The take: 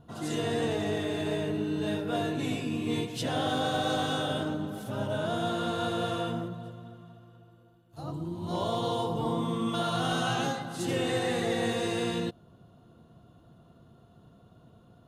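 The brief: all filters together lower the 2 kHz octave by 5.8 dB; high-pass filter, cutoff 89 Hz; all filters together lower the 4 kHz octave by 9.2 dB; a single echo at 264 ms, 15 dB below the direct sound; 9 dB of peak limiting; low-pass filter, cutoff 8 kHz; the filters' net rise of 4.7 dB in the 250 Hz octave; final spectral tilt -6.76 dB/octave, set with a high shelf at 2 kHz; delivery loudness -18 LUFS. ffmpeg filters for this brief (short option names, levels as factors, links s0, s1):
-af "highpass=89,lowpass=8000,equalizer=f=250:t=o:g=6.5,highshelf=f=2000:g=-4.5,equalizer=f=2000:t=o:g=-4.5,equalizer=f=4000:t=o:g=-5.5,alimiter=level_in=1.06:limit=0.0631:level=0:latency=1,volume=0.944,aecho=1:1:264:0.178,volume=5.62"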